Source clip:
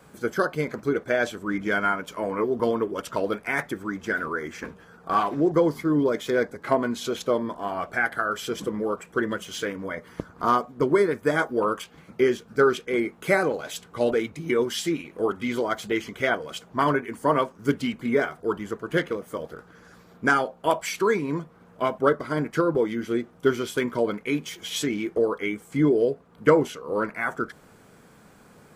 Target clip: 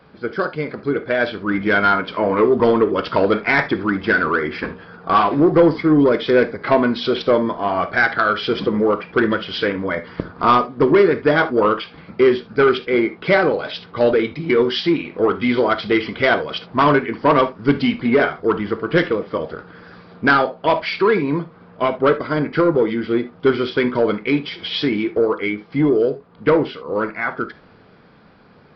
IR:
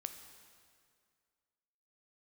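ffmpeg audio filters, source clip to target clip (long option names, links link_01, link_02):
-filter_complex "[0:a]dynaudnorm=framelen=390:gausssize=7:maxgain=12dB,aresample=11025,asoftclip=type=tanh:threshold=-9dB,aresample=44100[link_01];[1:a]atrim=start_sample=2205,atrim=end_sample=3528[link_02];[link_01][link_02]afir=irnorm=-1:irlink=0,volume=6dB"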